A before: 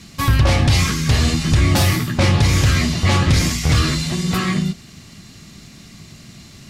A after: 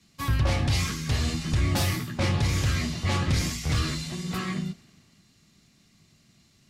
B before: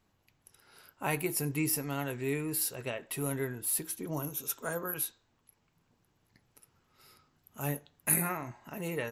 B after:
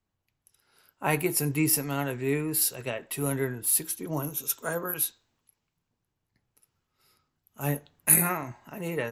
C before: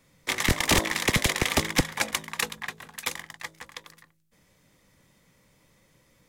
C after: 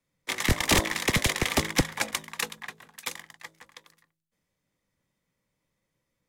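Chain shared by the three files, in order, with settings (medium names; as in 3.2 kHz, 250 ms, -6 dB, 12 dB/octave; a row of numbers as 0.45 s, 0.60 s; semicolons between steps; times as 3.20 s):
three bands expanded up and down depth 40%; normalise loudness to -27 LUFS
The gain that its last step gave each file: -10.0 dB, +5.0 dB, -2.0 dB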